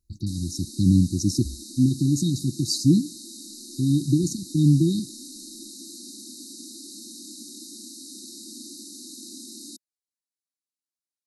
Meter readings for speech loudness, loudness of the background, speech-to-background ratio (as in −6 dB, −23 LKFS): −23.0 LKFS, −39.0 LKFS, 16.0 dB